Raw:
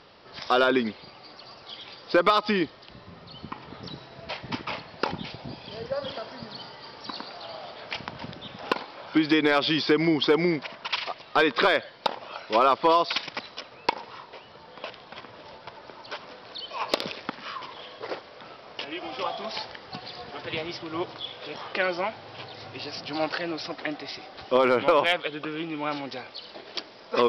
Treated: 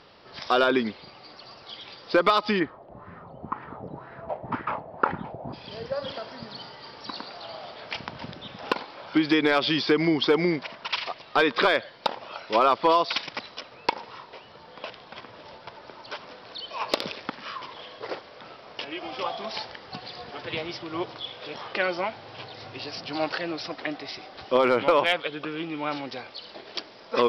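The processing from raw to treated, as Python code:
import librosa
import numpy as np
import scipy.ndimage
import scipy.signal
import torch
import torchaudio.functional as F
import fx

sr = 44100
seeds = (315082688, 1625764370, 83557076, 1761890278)

y = fx.filter_lfo_lowpass(x, sr, shape='sine', hz=2.0, low_hz=630.0, high_hz=1700.0, q=2.8, at=(2.59, 5.52), fade=0.02)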